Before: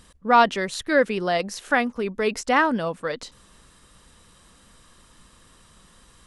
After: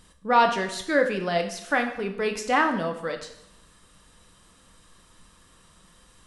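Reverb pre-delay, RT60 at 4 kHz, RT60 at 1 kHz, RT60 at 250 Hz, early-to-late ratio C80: 3 ms, 0.70 s, 0.80 s, 0.75 s, 11.5 dB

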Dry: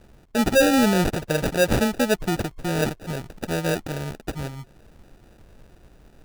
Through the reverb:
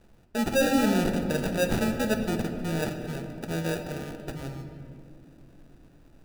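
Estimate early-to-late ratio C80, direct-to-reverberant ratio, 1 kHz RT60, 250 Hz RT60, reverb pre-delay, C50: 8.0 dB, 5.0 dB, 1.8 s, 4.6 s, 5 ms, 7.0 dB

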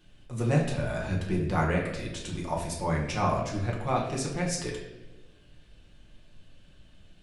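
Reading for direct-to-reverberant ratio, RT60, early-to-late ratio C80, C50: −3.5 dB, 1.1 s, 7.5 dB, 4.5 dB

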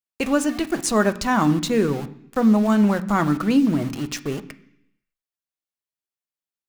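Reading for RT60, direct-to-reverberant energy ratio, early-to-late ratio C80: 0.70 s, 8.0 dB, 18.5 dB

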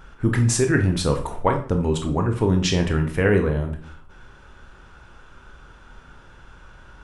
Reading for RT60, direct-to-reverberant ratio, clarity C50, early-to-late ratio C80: 0.45 s, 4.0 dB, 9.5 dB, 14.0 dB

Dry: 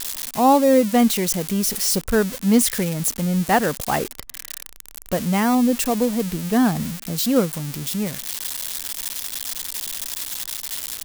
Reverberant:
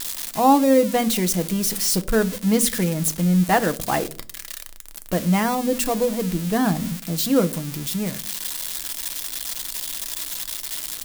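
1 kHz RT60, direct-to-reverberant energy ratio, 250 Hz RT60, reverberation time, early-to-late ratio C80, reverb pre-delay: 0.35 s, 9.0 dB, 0.70 s, 0.45 s, 25.0 dB, 3 ms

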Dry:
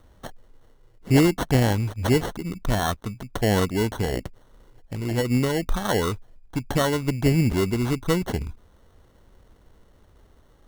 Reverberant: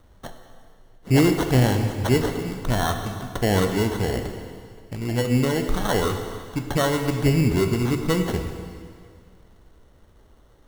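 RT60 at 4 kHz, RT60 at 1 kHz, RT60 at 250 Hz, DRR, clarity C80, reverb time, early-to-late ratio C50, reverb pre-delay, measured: 2.0 s, 2.1 s, 2.1 s, 5.0 dB, 7.5 dB, 2.1 s, 6.5 dB, 5 ms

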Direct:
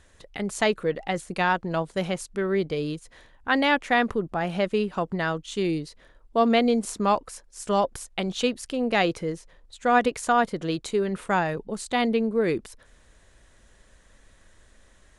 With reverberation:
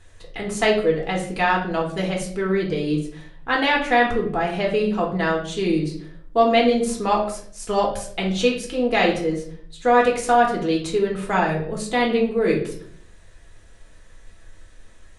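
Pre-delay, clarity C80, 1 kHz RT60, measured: 3 ms, 11.5 dB, 0.50 s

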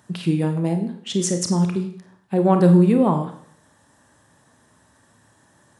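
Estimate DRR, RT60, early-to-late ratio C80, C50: 5.5 dB, 0.60 s, 12.0 dB, 8.5 dB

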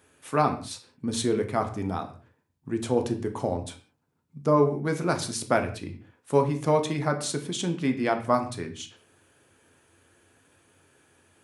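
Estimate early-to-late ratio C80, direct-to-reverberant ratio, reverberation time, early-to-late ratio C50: 15.0 dB, 5.0 dB, non-exponential decay, 12.0 dB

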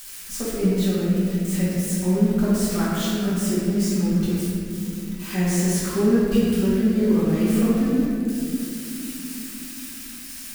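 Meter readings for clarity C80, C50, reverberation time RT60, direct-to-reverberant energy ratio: −1.0 dB, −3.5 dB, 2.9 s, −11.5 dB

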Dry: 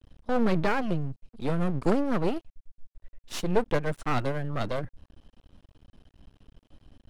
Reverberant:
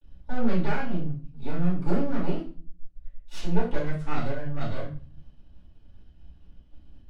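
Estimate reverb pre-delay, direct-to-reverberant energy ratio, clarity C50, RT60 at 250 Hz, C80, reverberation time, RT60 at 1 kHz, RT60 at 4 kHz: 3 ms, −10.0 dB, 6.0 dB, 0.70 s, 11.5 dB, 0.40 s, 0.40 s, 0.35 s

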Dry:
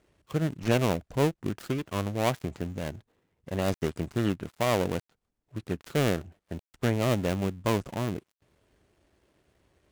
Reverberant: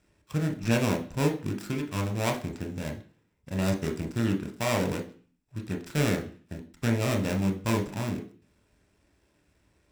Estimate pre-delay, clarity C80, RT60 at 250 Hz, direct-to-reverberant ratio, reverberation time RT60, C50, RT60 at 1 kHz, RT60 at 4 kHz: 24 ms, 17.0 dB, 0.50 s, 3.0 dB, 0.45 s, 11.5 dB, 0.45 s, 0.50 s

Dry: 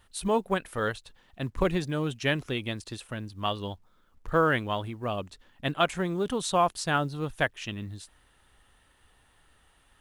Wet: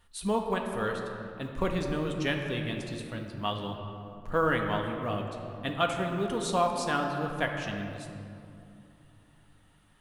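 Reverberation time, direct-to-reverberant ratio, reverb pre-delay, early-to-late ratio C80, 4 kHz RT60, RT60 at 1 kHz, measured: 2.7 s, 2.0 dB, 4 ms, 5.0 dB, 1.3 s, 2.5 s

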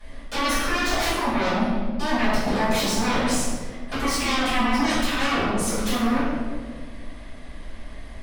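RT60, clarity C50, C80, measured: 1.7 s, −1.5 dB, 1.0 dB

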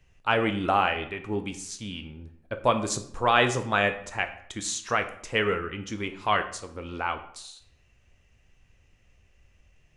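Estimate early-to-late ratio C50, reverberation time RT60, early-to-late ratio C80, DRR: 12.0 dB, 0.65 s, 15.0 dB, 7.5 dB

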